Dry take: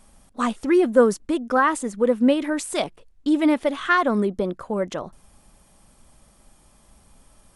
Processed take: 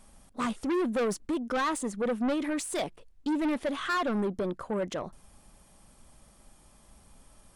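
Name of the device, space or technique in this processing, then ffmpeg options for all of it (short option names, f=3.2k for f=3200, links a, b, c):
saturation between pre-emphasis and de-emphasis: -af "highshelf=f=6.2k:g=7,asoftclip=type=tanh:threshold=-22.5dB,highshelf=f=6.2k:g=-7,volume=-2.5dB"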